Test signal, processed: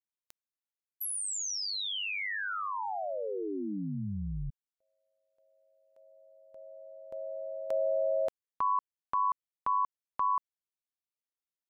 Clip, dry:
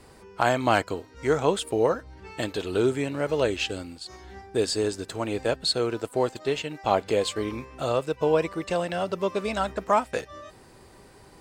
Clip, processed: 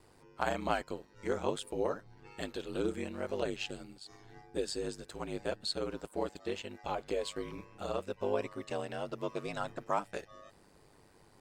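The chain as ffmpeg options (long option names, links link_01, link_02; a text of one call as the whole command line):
ffmpeg -i in.wav -af "aeval=exprs='val(0)*sin(2*PI*50*n/s)':channel_layout=same,volume=-8dB" out.wav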